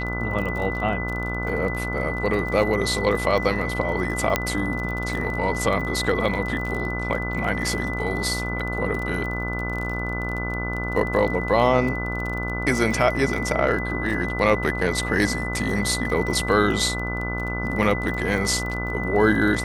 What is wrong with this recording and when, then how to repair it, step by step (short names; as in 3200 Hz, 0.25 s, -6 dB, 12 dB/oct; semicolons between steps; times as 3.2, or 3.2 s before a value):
buzz 60 Hz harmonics 25 -29 dBFS
crackle 26/s -29 dBFS
tone 2000 Hz -29 dBFS
4.36 pop -4 dBFS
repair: de-click; notch 2000 Hz, Q 30; de-hum 60 Hz, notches 25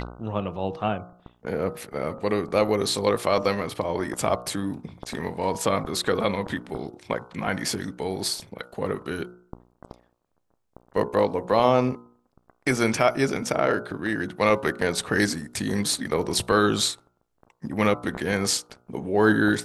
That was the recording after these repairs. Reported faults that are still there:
none